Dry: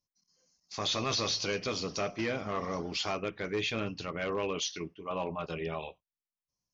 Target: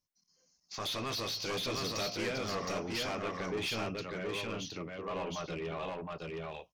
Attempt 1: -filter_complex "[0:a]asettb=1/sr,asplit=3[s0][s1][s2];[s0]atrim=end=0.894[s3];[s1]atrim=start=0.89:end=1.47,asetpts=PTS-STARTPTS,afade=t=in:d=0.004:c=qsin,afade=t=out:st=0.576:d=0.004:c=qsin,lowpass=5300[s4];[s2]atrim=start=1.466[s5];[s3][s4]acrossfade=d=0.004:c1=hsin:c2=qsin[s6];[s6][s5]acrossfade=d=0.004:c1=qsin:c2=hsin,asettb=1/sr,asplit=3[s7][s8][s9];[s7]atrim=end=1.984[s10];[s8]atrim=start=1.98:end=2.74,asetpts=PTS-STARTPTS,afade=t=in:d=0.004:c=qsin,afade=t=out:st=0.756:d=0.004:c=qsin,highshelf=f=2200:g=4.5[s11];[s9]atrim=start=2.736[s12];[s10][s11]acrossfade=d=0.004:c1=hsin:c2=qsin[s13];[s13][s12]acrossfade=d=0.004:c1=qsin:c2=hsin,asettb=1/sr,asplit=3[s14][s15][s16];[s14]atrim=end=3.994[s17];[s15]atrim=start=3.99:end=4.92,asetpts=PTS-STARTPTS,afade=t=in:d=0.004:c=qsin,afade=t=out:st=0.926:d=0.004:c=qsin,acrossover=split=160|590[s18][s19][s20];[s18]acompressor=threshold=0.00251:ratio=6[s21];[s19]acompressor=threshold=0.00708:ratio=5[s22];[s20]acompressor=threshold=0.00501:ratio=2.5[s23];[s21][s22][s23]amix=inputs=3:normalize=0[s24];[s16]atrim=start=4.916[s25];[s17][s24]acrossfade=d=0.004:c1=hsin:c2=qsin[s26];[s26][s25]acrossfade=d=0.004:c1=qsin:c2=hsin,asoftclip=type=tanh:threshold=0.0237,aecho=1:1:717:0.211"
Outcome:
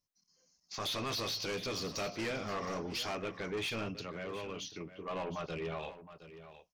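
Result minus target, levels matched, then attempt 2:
echo-to-direct -11.5 dB
-filter_complex "[0:a]asettb=1/sr,asplit=3[s0][s1][s2];[s0]atrim=end=0.894[s3];[s1]atrim=start=0.89:end=1.47,asetpts=PTS-STARTPTS,afade=t=in:d=0.004:c=qsin,afade=t=out:st=0.576:d=0.004:c=qsin,lowpass=5300[s4];[s2]atrim=start=1.466[s5];[s3][s4]acrossfade=d=0.004:c1=hsin:c2=qsin[s6];[s6][s5]acrossfade=d=0.004:c1=qsin:c2=hsin,asettb=1/sr,asplit=3[s7][s8][s9];[s7]atrim=end=1.984[s10];[s8]atrim=start=1.98:end=2.74,asetpts=PTS-STARTPTS,afade=t=in:d=0.004:c=qsin,afade=t=out:st=0.756:d=0.004:c=qsin,highshelf=f=2200:g=4.5[s11];[s9]atrim=start=2.736[s12];[s10][s11]acrossfade=d=0.004:c1=hsin:c2=qsin[s13];[s13][s12]acrossfade=d=0.004:c1=qsin:c2=hsin,asettb=1/sr,asplit=3[s14][s15][s16];[s14]atrim=end=3.994[s17];[s15]atrim=start=3.99:end=4.92,asetpts=PTS-STARTPTS,afade=t=in:d=0.004:c=qsin,afade=t=out:st=0.926:d=0.004:c=qsin,acrossover=split=160|590[s18][s19][s20];[s18]acompressor=threshold=0.00251:ratio=6[s21];[s19]acompressor=threshold=0.00708:ratio=5[s22];[s20]acompressor=threshold=0.00501:ratio=2.5[s23];[s21][s22][s23]amix=inputs=3:normalize=0[s24];[s16]atrim=start=4.916[s25];[s17][s24]acrossfade=d=0.004:c1=hsin:c2=qsin[s26];[s26][s25]acrossfade=d=0.004:c1=qsin:c2=hsin,asoftclip=type=tanh:threshold=0.0237,aecho=1:1:717:0.794"

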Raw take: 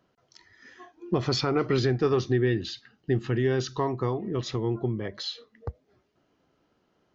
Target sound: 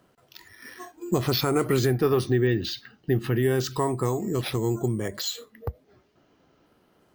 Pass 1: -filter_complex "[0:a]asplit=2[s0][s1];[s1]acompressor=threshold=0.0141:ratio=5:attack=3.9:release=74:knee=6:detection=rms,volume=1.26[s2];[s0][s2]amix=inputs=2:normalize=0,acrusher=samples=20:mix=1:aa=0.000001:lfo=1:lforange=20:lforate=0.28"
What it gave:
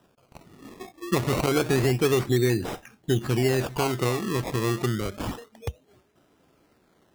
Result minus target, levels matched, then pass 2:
decimation with a swept rate: distortion +10 dB
-filter_complex "[0:a]asplit=2[s0][s1];[s1]acompressor=threshold=0.0141:ratio=5:attack=3.9:release=74:knee=6:detection=rms,volume=1.26[s2];[s0][s2]amix=inputs=2:normalize=0,acrusher=samples=4:mix=1:aa=0.000001:lfo=1:lforange=4:lforate=0.28"

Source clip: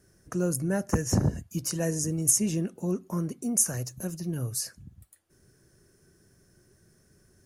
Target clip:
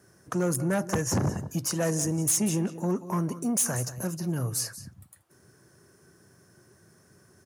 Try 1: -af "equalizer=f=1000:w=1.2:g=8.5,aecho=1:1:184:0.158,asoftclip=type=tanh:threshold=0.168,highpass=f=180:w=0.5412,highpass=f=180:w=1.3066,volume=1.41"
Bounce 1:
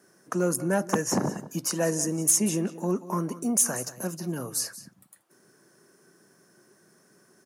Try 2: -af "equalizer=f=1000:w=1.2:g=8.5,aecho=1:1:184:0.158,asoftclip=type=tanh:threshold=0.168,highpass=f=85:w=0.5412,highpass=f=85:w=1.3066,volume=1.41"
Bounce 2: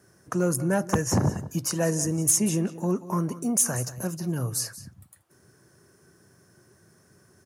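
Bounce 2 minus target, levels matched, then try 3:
saturation: distortion -8 dB
-af "equalizer=f=1000:w=1.2:g=8.5,aecho=1:1:184:0.158,asoftclip=type=tanh:threshold=0.0708,highpass=f=85:w=0.5412,highpass=f=85:w=1.3066,volume=1.41"

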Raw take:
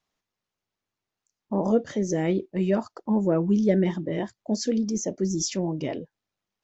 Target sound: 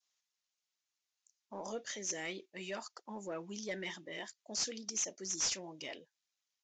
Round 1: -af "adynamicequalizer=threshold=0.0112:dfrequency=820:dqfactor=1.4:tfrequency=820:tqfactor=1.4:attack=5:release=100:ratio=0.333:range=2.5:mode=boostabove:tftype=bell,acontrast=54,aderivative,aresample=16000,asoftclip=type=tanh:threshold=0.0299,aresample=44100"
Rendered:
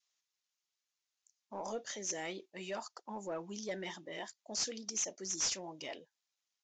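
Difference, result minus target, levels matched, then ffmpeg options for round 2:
1 kHz band +3.0 dB
-af "adynamicequalizer=threshold=0.0112:dfrequency=2200:dqfactor=1.4:tfrequency=2200:tqfactor=1.4:attack=5:release=100:ratio=0.333:range=2.5:mode=boostabove:tftype=bell,acontrast=54,aderivative,aresample=16000,asoftclip=type=tanh:threshold=0.0299,aresample=44100"

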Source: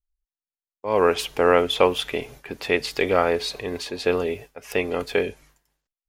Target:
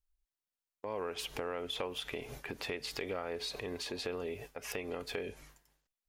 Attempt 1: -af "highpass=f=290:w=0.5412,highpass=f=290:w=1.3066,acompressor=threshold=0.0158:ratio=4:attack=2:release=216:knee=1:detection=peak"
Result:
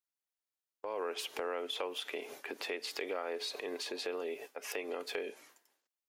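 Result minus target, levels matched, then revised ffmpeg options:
250 Hz band -3.0 dB
-af "acompressor=threshold=0.0158:ratio=4:attack=2:release=216:knee=1:detection=peak"

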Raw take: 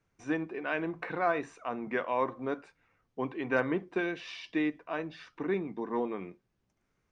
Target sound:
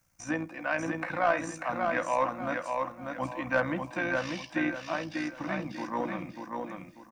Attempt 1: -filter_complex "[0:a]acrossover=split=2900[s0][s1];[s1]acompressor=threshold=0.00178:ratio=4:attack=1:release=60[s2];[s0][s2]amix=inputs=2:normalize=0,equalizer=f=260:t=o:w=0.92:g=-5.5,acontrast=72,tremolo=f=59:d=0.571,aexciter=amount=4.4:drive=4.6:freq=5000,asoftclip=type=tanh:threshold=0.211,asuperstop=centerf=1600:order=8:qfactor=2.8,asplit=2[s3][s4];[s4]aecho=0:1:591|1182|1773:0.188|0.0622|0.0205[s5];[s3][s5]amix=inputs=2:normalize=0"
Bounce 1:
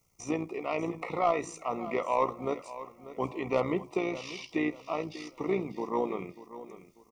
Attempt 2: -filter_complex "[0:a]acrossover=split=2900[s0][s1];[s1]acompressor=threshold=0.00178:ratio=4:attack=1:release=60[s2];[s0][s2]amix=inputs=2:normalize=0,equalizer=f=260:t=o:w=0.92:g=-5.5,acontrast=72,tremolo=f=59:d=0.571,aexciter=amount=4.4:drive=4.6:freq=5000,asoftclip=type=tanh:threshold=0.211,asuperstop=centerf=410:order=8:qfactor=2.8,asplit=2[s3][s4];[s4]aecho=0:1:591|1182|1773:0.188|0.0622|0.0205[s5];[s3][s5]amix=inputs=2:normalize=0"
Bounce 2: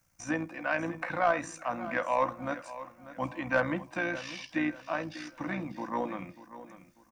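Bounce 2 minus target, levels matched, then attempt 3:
echo-to-direct -10.5 dB
-filter_complex "[0:a]acrossover=split=2900[s0][s1];[s1]acompressor=threshold=0.00178:ratio=4:attack=1:release=60[s2];[s0][s2]amix=inputs=2:normalize=0,equalizer=f=260:t=o:w=0.92:g=-5.5,acontrast=72,tremolo=f=59:d=0.571,aexciter=amount=4.4:drive=4.6:freq=5000,asoftclip=type=tanh:threshold=0.211,asuperstop=centerf=410:order=8:qfactor=2.8,asplit=2[s3][s4];[s4]aecho=0:1:591|1182|1773|2364:0.631|0.208|0.0687|0.0227[s5];[s3][s5]amix=inputs=2:normalize=0"

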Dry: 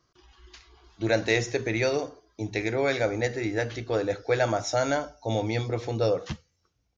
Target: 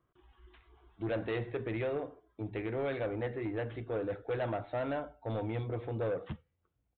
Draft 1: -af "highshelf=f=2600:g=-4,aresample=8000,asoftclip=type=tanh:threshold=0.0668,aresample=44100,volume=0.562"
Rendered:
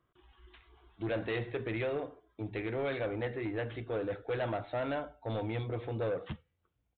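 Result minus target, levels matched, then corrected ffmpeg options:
4 kHz band +4.0 dB
-af "highshelf=f=2600:g=-13.5,aresample=8000,asoftclip=type=tanh:threshold=0.0668,aresample=44100,volume=0.562"

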